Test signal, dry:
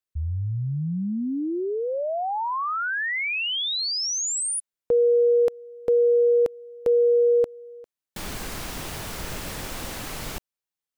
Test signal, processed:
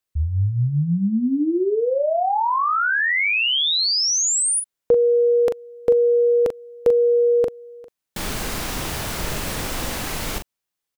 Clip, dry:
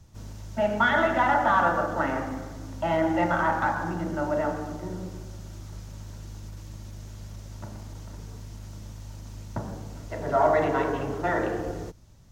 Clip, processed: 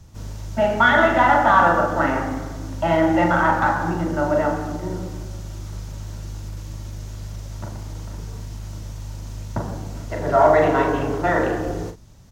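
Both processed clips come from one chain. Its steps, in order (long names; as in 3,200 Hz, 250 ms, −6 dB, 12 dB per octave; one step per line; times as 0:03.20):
double-tracking delay 41 ms −7.5 dB
level +6 dB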